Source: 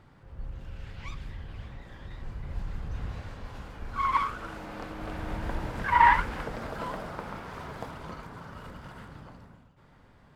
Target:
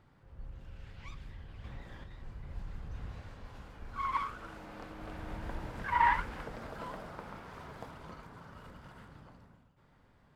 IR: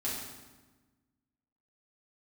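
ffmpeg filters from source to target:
-filter_complex "[0:a]asettb=1/sr,asplit=3[a][b][c];[a]atrim=end=1.644[d];[b]atrim=start=1.64:end=2.04,asetpts=PTS-STARTPTS,afade=t=in:d=0.004:c=qsin,afade=t=out:st=0.396:d=0.004:c=qsin,acontrast=35[e];[c]atrim=start=2.036[f];[d][e]acrossfade=d=0.004:c1=hsin:c2=qsin[g];[g][f]acrossfade=d=0.004:c1=qsin:c2=hsin,volume=-7.5dB"

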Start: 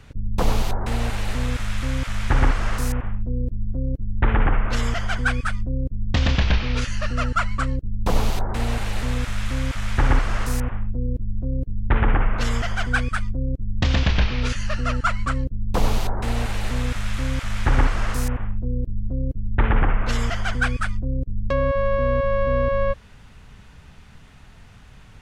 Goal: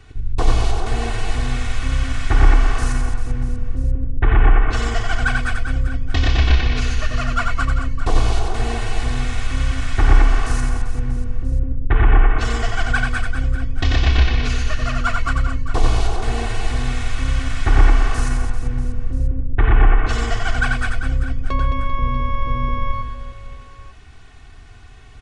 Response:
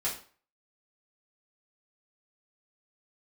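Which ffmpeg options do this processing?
-filter_complex "[0:a]aecho=1:1:2.7:0.79,asplit=2[a][b];[b]aecho=0:1:90|216|392.4|639.4|985.1:0.631|0.398|0.251|0.158|0.1[c];[a][c]amix=inputs=2:normalize=0,aresample=22050,aresample=44100,volume=-1.5dB"

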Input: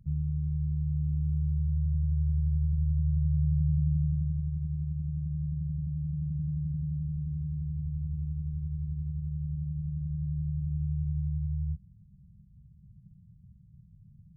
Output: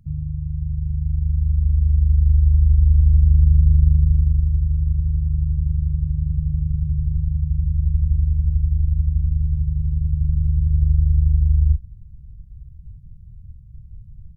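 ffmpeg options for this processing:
-filter_complex "[0:a]asubboost=boost=11.5:cutoff=64,asplit=2[a][b];[b]asetrate=29433,aresample=44100,atempo=1.49831,volume=-5dB[c];[a][c]amix=inputs=2:normalize=0,volume=3.5dB"

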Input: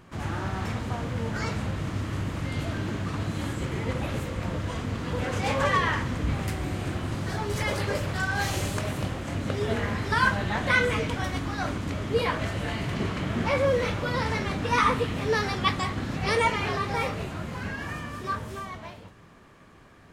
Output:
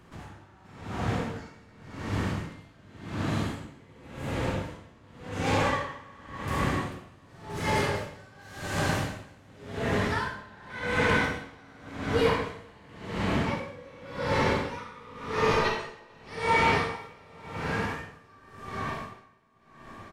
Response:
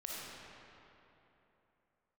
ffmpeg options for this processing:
-filter_complex "[0:a]asettb=1/sr,asplit=3[a][b][c];[a]atrim=end=15.354[d];[b]atrim=start=15.35:end=16.11,asetpts=PTS-STARTPTS,afade=t=in:d=0.004:c=qsin,afade=t=out:st=0.756:d=0.004:c=qsin,aeval=exprs='val(0)*sin(2*PI*760*n/s)':c=same[e];[c]atrim=start=16.106[f];[d][e]acrossfade=d=0.004:c1=hsin:c2=qsin[g];[g][f]acrossfade=d=0.004:c1=qsin:c2=hsin,acrossover=split=110[h][i];[h]asoftclip=type=tanh:threshold=-34dB[j];[i]aecho=1:1:443|886|1329|1772|2215|2658:0.376|0.203|0.11|0.0592|0.032|0.0173[k];[j][k]amix=inputs=2:normalize=0[l];[1:a]atrim=start_sample=2205,asetrate=61740,aresample=44100[m];[l][m]afir=irnorm=-1:irlink=0,aeval=exprs='val(0)*pow(10,-27*(0.5-0.5*cos(2*PI*0.9*n/s))/20)':c=same,volume=5.5dB"

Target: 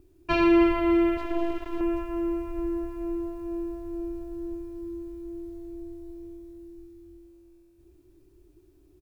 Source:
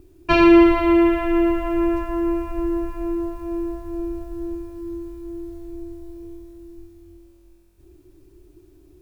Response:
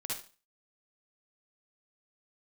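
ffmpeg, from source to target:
-filter_complex "[0:a]aecho=1:1:309|618|927|1236|1545|1854:0.224|0.121|0.0653|0.0353|0.019|0.0103,asettb=1/sr,asplit=3[a][b][c];[a]atrim=end=1.174[d];[b]atrim=start=1.17:end=1.81,asetpts=PTS-STARTPTS,afade=t=in:d=0.004:c=qsin,afade=t=out:st=0.636:d=0.004:c=qsin,aeval=exprs='max(val(0),0)':c=same[e];[c]atrim=start=1.806[f];[d][e]acrossfade=d=0.004:c1=hsin:c2=qsin[g];[g][f]acrossfade=d=0.004:c1=qsin:c2=hsin,volume=-8dB"

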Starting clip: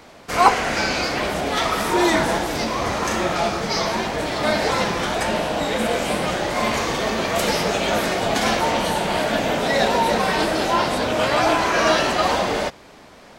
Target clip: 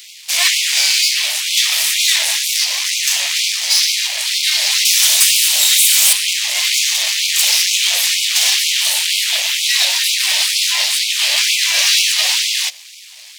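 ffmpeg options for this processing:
-filter_complex "[0:a]asettb=1/sr,asplit=3[a][b][c];[a]atrim=end=4.854[d];[b]atrim=start=4.85:end=6.13,asetpts=PTS-STARTPTS,afade=t=in:d=0.004:c=qsin,afade=t=out:st=1.276:d=0.004:c=qsin,aemphasis=mode=production:type=75kf[e];[c]atrim=start=6.126[f];[d][e]acrossfade=d=0.004:c1=hsin:c2=qsin[g];[g][f]acrossfade=d=0.004:c1=qsin:c2=hsin,aeval=exprs='max(val(0),0)':c=same,aexciter=amount=13:drive=5.3:freq=2.1k,asoftclip=type=tanh:threshold=0dB,afftfilt=real='re*gte(b*sr/1024,510*pow(2100/510,0.5+0.5*sin(2*PI*2.1*pts/sr)))':imag='im*gte(b*sr/1024,510*pow(2100/510,0.5+0.5*sin(2*PI*2.1*pts/sr)))':win_size=1024:overlap=0.75,volume=-4.5dB"

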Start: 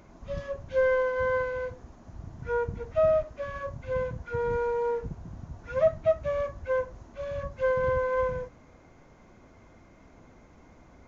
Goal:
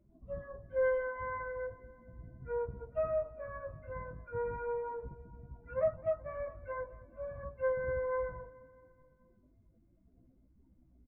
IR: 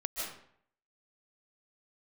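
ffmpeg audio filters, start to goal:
-filter_complex "[0:a]lowpass=2.8k,afftdn=nr=26:nf=-45,adynamicequalizer=threshold=0.00501:dfrequency=180:dqfactor=0.93:tfrequency=180:tqfactor=0.93:attack=5:release=100:ratio=0.375:range=3:mode=cutabove:tftype=bell,flanger=delay=15:depth=5.6:speed=0.38,asplit=2[a][b];[b]aecho=0:1:214|428|642|856|1070:0.106|0.0636|0.0381|0.0229|0.0137[c];[a][c]amix=inputs=2:normalize=0,volume=-5dB"

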